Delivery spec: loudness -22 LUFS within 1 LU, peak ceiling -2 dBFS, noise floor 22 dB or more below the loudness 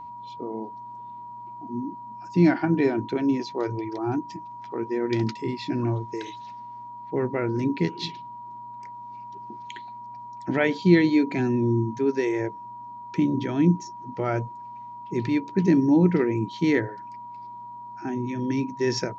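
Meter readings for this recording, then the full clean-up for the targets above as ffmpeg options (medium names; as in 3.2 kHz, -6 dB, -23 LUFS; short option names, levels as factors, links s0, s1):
steady tone 960 Hz; tone level -37 dBFS; loudness -25.0 LUFS; peak level -5.5 dBFS; loudness target -22.0 LUFS
-> -af "bandreject=f=960:w=30"
-af "volume=1.41"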